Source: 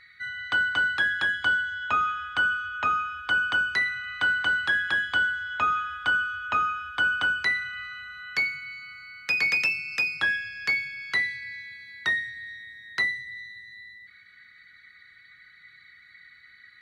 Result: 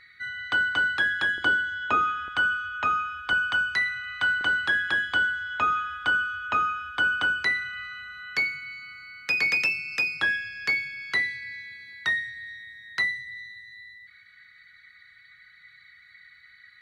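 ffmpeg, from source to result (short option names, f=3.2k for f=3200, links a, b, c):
-af "asetnsamples=n=441:p=0,asendcmd='1.38 equalizer g 11.5;2.28 equalizer g 1;3.33 equalizer g -5.5;4.41 equalizer g 3.5;11.93 equalizer g -4.5;13.54 equalizer g -11.5',equalizer=f=360:t=o:w=1.3:g=3"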